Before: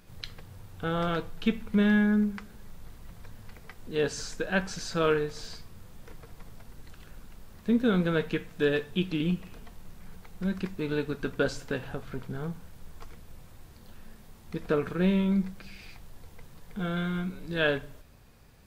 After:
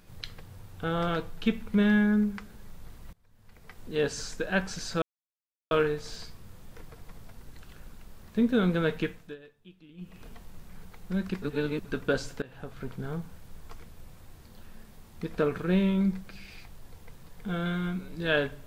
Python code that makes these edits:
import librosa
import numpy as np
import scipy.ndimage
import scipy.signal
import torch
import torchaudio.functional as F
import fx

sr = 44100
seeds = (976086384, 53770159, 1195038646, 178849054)

y = fx.edit(x, sr, fx.fade_in_from(start_s=3.13, length_s=0.65, curve='qua', floor_db=-22.5),
    fx.insert_silence(at_s=5.02, length_s=0.69),
    fx.fade_down_up(start_s=8.37, length_s=1.21, db=-24.0, fade_s=0.3),
    fx.reverse_span(start_s=10.73, length_s=0.43),
    fx.fade_in_from(start_s=11.73, length_s=0.61, curve='qsin', floor_db=-21.0), tone=tone)